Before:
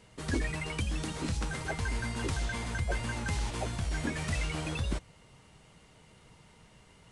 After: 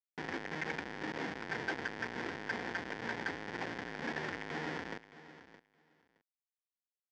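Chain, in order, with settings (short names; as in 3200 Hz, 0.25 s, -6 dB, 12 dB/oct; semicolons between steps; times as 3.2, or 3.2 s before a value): median filter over 15 samples; dynamic EQ 2200 Hz, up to +6 dB, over -54 dBFS, Q 0.82; compressor 2:1, threshold -48 dBFS, peak gain reduction 12 dB; Schmitt trigger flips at -45 dBFS; speaker cabinet 370–4700 Hz, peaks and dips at 380 Hz -3 dB, 610 Hz -9 dB, 1200 Hz -9 dB, 1800 Hz +7 dB, 2700 Hz -5 dB, 4000 Hz -8 dB; feedback echo 0.618 s, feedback 16%, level -15.5 dB; gain +13.5 dB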